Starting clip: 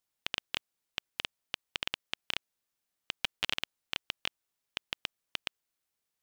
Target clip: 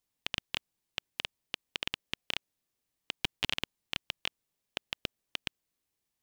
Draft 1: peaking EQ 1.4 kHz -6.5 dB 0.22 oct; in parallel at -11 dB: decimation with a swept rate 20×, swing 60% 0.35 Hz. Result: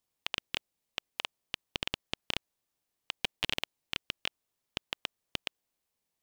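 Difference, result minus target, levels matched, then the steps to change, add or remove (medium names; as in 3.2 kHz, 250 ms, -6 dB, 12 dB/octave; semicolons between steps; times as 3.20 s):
decimation with a swept rate: distortion -8 dB
change: decimation with a swept rate 52×, swing 60% 0.35 Hz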